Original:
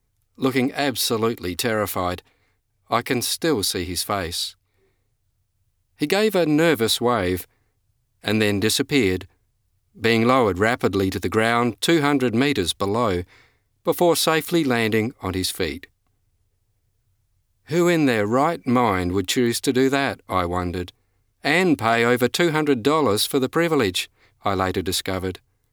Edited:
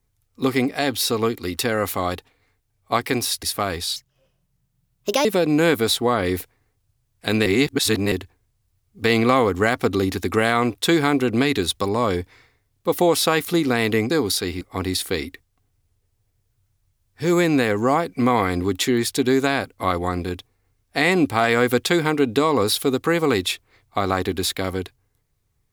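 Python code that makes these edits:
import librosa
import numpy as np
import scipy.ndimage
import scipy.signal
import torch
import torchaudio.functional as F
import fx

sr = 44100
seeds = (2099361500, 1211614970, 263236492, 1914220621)

y = fx.edit(x, sr, fx.move(start_s=3.43, length_s=0.51, to_s=15.1),
    fx.speed_span(start_s=4.47, length_s=1.78, speed=1.38),
    fx.reverse_span(start_s=8.46, length_s=0.66), tone=tone)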